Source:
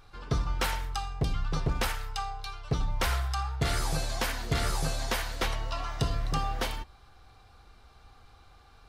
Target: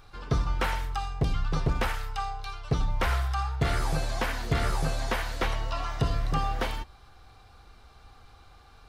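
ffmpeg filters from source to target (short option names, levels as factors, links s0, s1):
-filter_complex "[0:a]acrossover=split=2900[s0][s1];[s1]acompressor=threshold=0.00631:ratio=4:attack=1:release=60[s2];[s0][s2]amix=inputs=2:normalize=0,volume=1.33"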